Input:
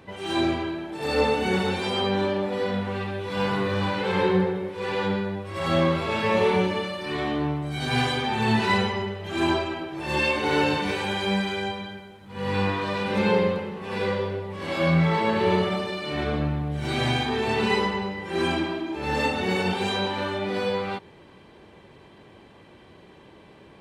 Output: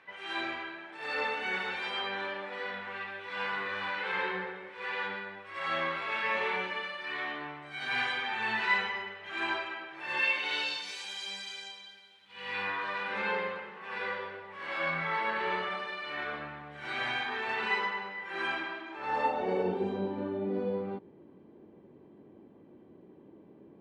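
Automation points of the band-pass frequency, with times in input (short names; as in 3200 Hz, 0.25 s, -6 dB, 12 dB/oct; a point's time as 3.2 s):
band-pass, Q 1.6
10.19 s 1800 Hz
10.9 s 5800 Hz
11.84 s 5800 Hz
12.76 s 1600 Hz
18.9 s 1600 Hz
19.92 s 280 Hz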